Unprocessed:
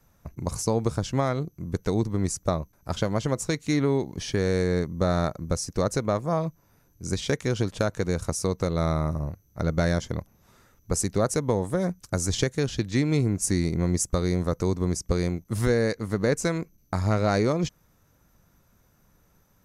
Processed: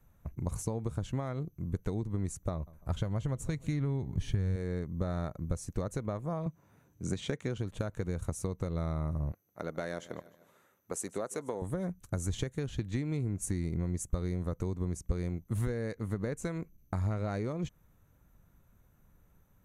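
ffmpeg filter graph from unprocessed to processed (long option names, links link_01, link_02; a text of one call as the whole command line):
ffmpeg -i in.wav -filter_complex "[0:a]asettb=1/sr,asplit=3[link_01][link_02][link_03];[link_01]atrim=end=2.524[link_04];[link_02]atrim=start=2.52:end=4.56,asetpts=PTS-STARTPTS,afade=type=in:duration=0.004:curve=qsin,afade=type=out:start_time=2.036:duration=0.004:curve=qsin,asubboost=boost=7.5:cutoff=170,asplit=2[link_05][link_06];[link_06]adelay=148,lowpass=frequency=2000:poles=1,volume=-24dB,asplit=2[link_07][link_08];[link_08]adelay=148,lowpass=frequency=2000:poles=1,volume=0.5,asplit=2[link_09][link_10];[link_10]adelay=148,lowpass=frequency=2000:poles=1,volume=0.5[link_11];[link_05][link_07][link_09][link_11]amix=inputs=4:normalize=0,atrim=end_sample=89964[link_12];[link_03]atrim=start=4.556[link_13];[link_04][link_12]acrossfade=duration=0.004:curve1=hsin:curve2=qsin[link_14];[link_14][link_13]acrossfade=duration=0.004:curve1=qsin:curve2=hsin,asettb=1/sr,asplit=3[link_15][link_16][link_17];[link_15]atrim=end=6.464[link_18];[link_16]atrim=start=6.46:end=7.58,asetpts=PTS-STARTPTS,afade=type=in:duration=0.004:curve=qsin,afade=type=out:start_time=1.116:duration=0.004:curve=qsin,equalizer=frequency=12000:width_type=o:width=0.54:gain=-10.5,acontrast=30,highpass=130[link_19];[link_17]atrim=start=7.576[link_20];[link_18][link_19]acrossfade=duration=0.004:curve1=hsin:curve2=qsin[link_21];[link_21][link_20]acrossfade=duration=0.004:curve1=qsin:curve2=hsin,asettb=1/sr,asplit=3[link_22][link_23][link_24];[link_22]atrim=end=9.324[link_25];[link_23]atrim=start=9.32:end=11.62,asetpts=PTS-STARTPTS,afade=type=in:duration=0.004:curve=qsin,afade=type=out:start_time=2.296:duration=0.004:curve=qsin,highpass=340,aecho=1:1:152|304|456|608:0.0891|0.0446|0.0223|0.0111,atrim=end_sample=101430[link_26];[link_24]atrim=start=11.616[link_27];[link_25][link_26]acrossfade=duration=0.004:curve1=hsin:curve2=qsin[link_28];[link_28][link_27]acrossfade=duration=0.004:curve1=qsin:curve2=hsin,equalizer=frequency=5100:width_type=o:width=0.45:gain=-13.5,acompressor=threshold=-26dB:ratio=6,lowshelf=frequency=140:gain=8.5,volume=-6.5dB" out.wav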